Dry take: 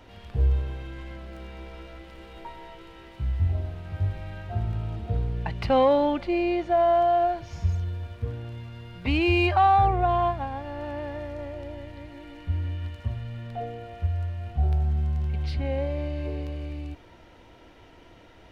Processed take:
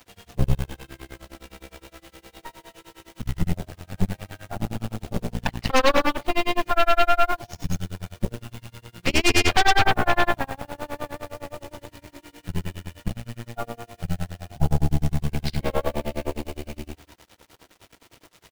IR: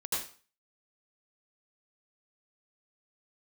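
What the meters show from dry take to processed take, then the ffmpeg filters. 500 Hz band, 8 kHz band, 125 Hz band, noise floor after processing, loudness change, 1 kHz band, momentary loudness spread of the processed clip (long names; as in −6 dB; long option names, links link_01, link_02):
−1.5 dB, can't be measured, −1.5 dB, −62 dBFS, +1.0 dB, −0.5 dB, 23 LU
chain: -filter_complex "[0:a]highpass=frequency=69:width=0.5412,highpass=frequency=69:width=1.3066,highshelf=frequency=4100:gain=9.5,aecho=1:1:189:0.126,acrusher=bits=7:mix=0:aa=0.000001,asplit=2[link_01][link_02];[1:a]atrim=start_sample=2205[link_03];[link_02][link_03]afir=irnorm=-1:irlink=0,volume=-21dB[link_04];[link_01][link_04]amix=inputs=2:normalize=0,tremolo=f=9.7:d=0.97,aeval=exprs='0.316*(cos(1*acos(clip(val(0)/0.316,-1,1)))-cos(1*PI/2))+0.141*(cos(8*acos(clip(val(0)/0.316,-1,1)))-cos(8*PI/2))':channel_layout=same"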